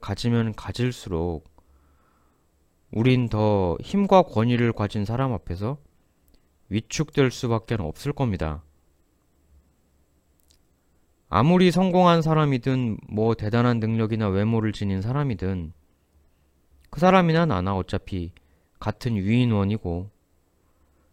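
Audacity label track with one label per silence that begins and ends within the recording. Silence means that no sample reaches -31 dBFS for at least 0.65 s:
1.370000	2.930000	silence
5.750000	6.710000	silence
8.570000	11.320000	silence
15.680000	16.930000	silence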